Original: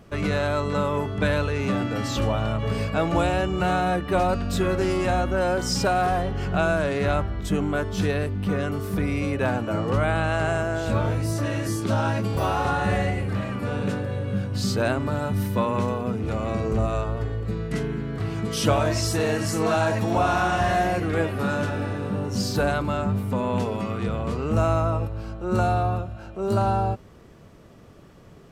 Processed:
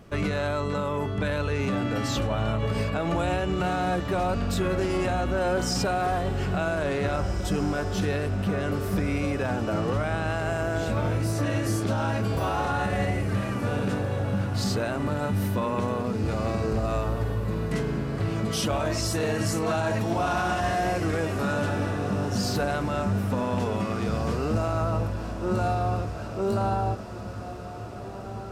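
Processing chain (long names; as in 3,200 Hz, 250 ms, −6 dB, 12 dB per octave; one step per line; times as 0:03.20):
brickwall limiter −18 dBFS, peak gain reduction 9.5 dB
on a send: feedback delay with all-pass diffusion 1,873 ms, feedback 60%, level −12 dB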